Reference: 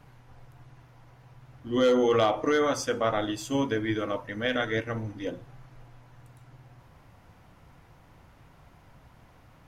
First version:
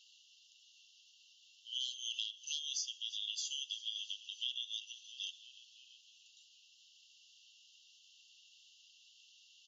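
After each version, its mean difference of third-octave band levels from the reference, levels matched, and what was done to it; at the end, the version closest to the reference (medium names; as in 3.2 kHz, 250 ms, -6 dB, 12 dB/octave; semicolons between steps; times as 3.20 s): 20.0 dB: FFT band-pass 2.7–7.3 kHz; frequency-shifting echo 333 ms, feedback 61%, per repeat -51 Hz, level -23.5 dB; compression 5:1, threshold -47 dBFS, peak gain reduction 14 dB; trim +9.5 dB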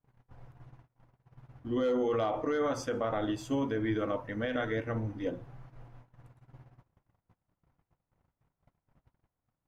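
5.5 dB: gate -50 dBFS, range -32 dB; treble shelf 2.3 kHz -11 dB; peak limiter -22.5 dBFS, peak gain reduction 7.5 dB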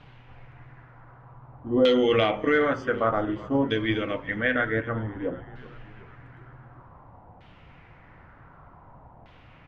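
4.0 dB: dynamic bell 980 Hz, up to -7 dB, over -41 dBFS, Q 1; LFO low-pass saw down 0.54 Hz 770–3400 Hz; on a send: frequency-shifting echo 377 ms, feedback 63%, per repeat -44 Hz, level -20 dB; on the sum: trim +3 dB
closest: third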